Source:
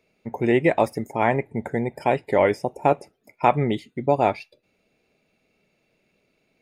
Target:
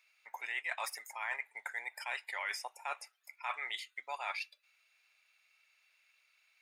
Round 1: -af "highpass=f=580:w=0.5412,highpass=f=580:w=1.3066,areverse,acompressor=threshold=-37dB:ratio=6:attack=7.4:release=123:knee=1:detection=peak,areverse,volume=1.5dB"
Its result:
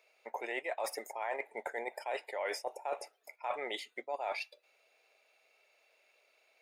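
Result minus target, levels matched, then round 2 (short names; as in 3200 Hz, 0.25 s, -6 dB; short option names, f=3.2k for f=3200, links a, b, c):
500 Hz band +13.5 dB
-af "highpass=f=1.2k:w=0.5412,highpass=f=1.2k:w=1.3066,areverse,acompressor=threshold=-37dB:ratio=6:attack=7.4:release=123:knee=1:detection=peak,areverse,volume=1.5dB"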